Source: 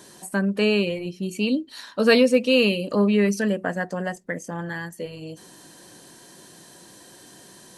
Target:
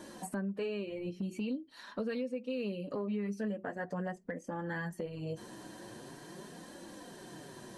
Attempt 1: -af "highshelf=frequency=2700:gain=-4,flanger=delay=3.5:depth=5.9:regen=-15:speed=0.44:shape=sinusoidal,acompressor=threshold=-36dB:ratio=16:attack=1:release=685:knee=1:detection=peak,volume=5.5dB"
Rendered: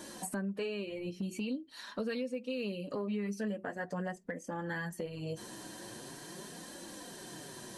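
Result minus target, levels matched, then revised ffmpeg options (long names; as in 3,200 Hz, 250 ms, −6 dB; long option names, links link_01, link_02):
4,000 Hz band +4.5 dB
-af "highshelf=frequency=2700:gain=-12.5,flanger=delay=3.5:depth=5.9:regen=-15:speed=0.44:shape=sinusoidal,acompressor=threshold=-36dB:ratio=16:attack=1:release=685:knee=1:detection=peak,volume=5.5dB"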